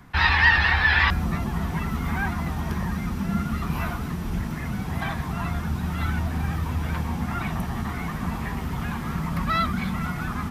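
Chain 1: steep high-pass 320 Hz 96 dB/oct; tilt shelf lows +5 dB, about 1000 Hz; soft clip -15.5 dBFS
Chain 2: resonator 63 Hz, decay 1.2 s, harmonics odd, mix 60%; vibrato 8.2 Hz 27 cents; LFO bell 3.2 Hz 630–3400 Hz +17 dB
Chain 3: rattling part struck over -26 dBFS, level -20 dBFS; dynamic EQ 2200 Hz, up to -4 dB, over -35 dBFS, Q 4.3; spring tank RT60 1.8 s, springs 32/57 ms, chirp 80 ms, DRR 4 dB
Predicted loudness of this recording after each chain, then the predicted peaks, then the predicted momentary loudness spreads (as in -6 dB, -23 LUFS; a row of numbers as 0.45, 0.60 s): -30.5, -25.5, -24.0 LUFS; -15.5, -2.5, -5.5 dBFS; 15, 17, 10 LU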